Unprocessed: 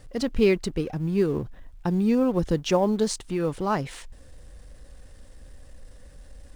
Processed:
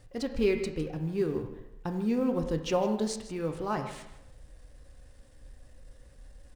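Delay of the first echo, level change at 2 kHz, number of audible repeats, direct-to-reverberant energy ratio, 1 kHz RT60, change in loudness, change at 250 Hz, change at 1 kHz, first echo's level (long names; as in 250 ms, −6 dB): 157 ms, −6.0 dB, 1, 4.5 dB, 0.85 s, −6.0 dB, −6.5 dB, −5.5 dB, −15.0 dB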